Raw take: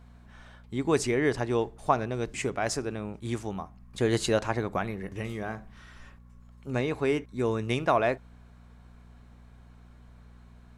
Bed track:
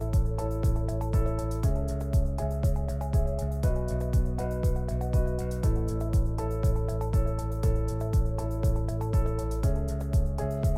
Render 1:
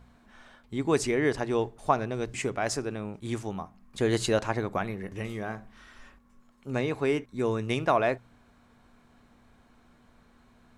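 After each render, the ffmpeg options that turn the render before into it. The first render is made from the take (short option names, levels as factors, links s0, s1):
-af "bandreject=f=60:t=h:w=4,bandreject=f=120:t=h:w=4,bandreject=f=180:t=h:w=4"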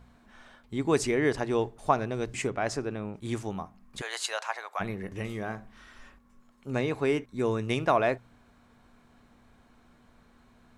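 -filter_complex "[0:a]asettb=1/sr,asplit=3[s0][s1][s2];[s0]atrim=end=2.474[s3];[s1]atrim=start=2.47:end=3.16,asetpts=PTS-STARTPTS,afade=t=in:d=0.004:c=qsin,afade=t=out:st=0.686:d=0.004:c=qsin,lowpass=f=3800:p=1[s4];[s2]atrim=start=3.156[s5];[s3][s4]acrossfade=d=0.004:c1=hsin:c2=qsin[s6];[s6][s5]acrossfade=d=0.004:c1=qsin:c2=hsin,asplit=3[s7][s8][s9];[s7]afade=t=out:st=4:d=0.02[s10];[s8]highpass=f=750:w=0.5412,highpass=f=750:w=1.3066,afade=t=in:st=4:d=0.02,afade=t=out:st=4.79:d=0.02[s11];[s9]afade=t=in:st=4.79:d=0.02[s12];[s10][s11][s12]amix=inputs=3:normalize=0"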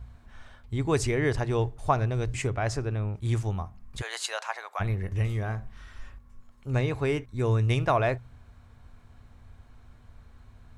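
-af "lowshelf=f=140:t=q:w=1.5:g=12.5"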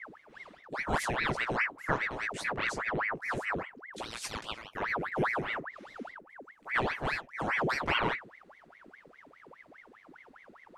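-af "flanger=delay=17:depth=3.7:speed=0.73,aeval=exprs='val(0)*sin(2*PI*1200*n/s+1200*0.8/4.9*sin(2*PI*4.9*n/s))':c=same"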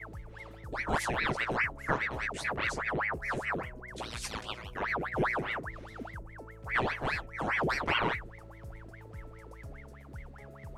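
-filter_complex "[1:a]volume=0.0944[s0];[0:a][s0]amix=inputs=2:normalize=0"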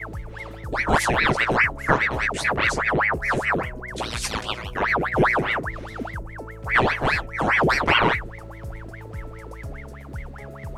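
-af "volume=3.55"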